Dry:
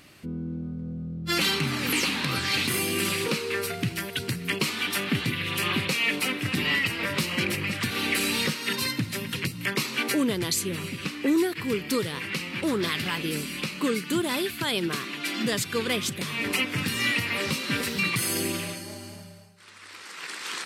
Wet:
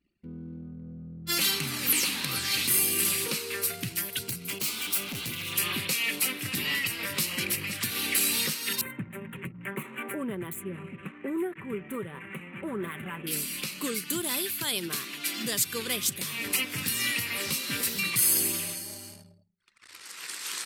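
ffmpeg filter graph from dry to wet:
-filter_complex "[0:a]asettb=1/sr,asplit=3[s0][s1][s2];[s0]atrim=end=4.264[s3];[s1]atrim=start=4.26:end=5.53,asetpts=PTS-STARTPTS,afade=t=in:d=0.004:c=qsin,afade=t=out:st=1.266:d=0.004:c=qsin,bandreject=f=1800:w=5.3,asoftclip=type=hard:threshold=0.0473[s4];[s2]atrim=start=5.526[s5];[s3][s4]acrossfade=d=0.004:c1=hsin:c2=qsin[s6];[s6][s5]acrossfade=d=0.004:c1=qsin:c2=hsin,asettb=1/sr,asplit=3[s7][s8][s9];[s7]atrim=end=8.814[s10];[s8]atrim=start=8.81:end=13.27,asetpts=PTS-STARTPTS,afade=t=in:d=0.004:c=qsin,afade=t=out:st=4.456:d=0.004:c=qsin,adynamicsmooth=sensitivity=1.5:basefreq=4400,asuperstop=centerf=4900:order=4:qfactor=0.56,aecho=1:1:5.2:0.41,atrim=end_sample=196686[s11];[s9]atrim=start=13.266[s12];[s10][s11]acrossfade=d=0.004:c1=hsin:c2=qsin[s13];[s13][s12]acrossfade=d=0.004:c1=qsin:c2=hsin,anlmdn=0.0631,aemphasis=mode=production:type=75fm,volume=0.447"

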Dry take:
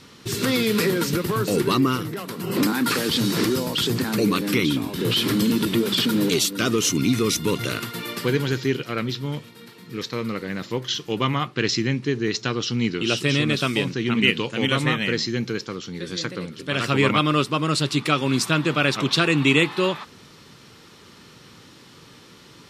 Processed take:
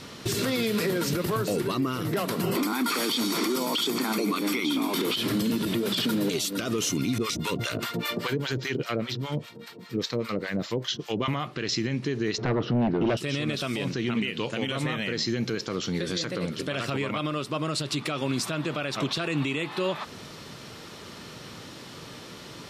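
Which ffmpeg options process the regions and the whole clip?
-filter_complex "[0:a]asettb=1/sr,asplit=3[s0][s1][s2];[s0]atrim=end=2.554[s3];[s1]atrim=start=2.55:end=5.16,asetpts=PTS-STARTPTS,afade=t=in:d=0.004:c=qsin,afade=t=out:st=2.606:d=0.004:c=qsin,acontrast=88,highpass=f=250:w=0.5412,highpass=f=250:w=1.3066,aecho=1:1:0.9:0.53,atrim=end_sample=115101[s4];[s2]atrim=start=5.156[s5];[s3][s4]acrossfade=d=0.004:c1=hsin:c2=qsin[s6];[s6][s5]acrossfade=d=0.004:c1=qsin:c2=hsin,asettb=1/sr,asplit=3[s7][s8][s9];[s7]atrim=end=7.184[s10];[s8]atrim=start=7.18:end=11.28,asetpts=PTS-STARTPTS,afade=t=in:d=0.004:c=qsin,afade=t=out:st=4.096:d=0.004:c=qsin,equalizer=f=11000:t=o:w=0.26:g=-11.5,acrossover=split=700[s11][s12];[s11]aeval=exprs='val(0)*(1-1/2+1/2*cos(2*PI*5*n/s))':c=same[s13];[s12]aeval=exprs='val(0)*(1-1/2-1/2*cos(2*PI*5*n/s))':c=same[s14];[s13][s14]amix=inputs=2:normalize=0[s15];[s9]atrim=start=11.276[s16];[s10][s15]acrossfade=d=0.004:c1=hsin:c2=qsin[s17];[s17][s16]acrossfade=d=0.004:c1=qsin:c2=hsin,asettb=1/sr,asplit=3[s18][s19][s20];[s18]atrim=end=12.384[s21];[s19]atrim=start=12.38:end=13.17,asetpts=PTS-STARTPTS,afade=t=in:d=0.004:c=qsin,afade=t=out:st=0.786:d=0.004:c=qsin,lowpass=1100,aeval=exprs='0.266*sin(PI/2*2.51*val(0)/0.266)':c=same[s22];[s20]atrim=start=13.166[s23];[s21][s22]acrossfade=d=0.004:c1=hsin:c2=qsin[s24];[s24][s23]acrossfade=d=0.004:c1=qsin:c2=hsin,equalizer=f=640:w=3.3:g=7.5,acompressor=threshold=0.0501:ratio=6,alimiter=limit=0.075:level=0:latency=1:release=49,volume=1.68"

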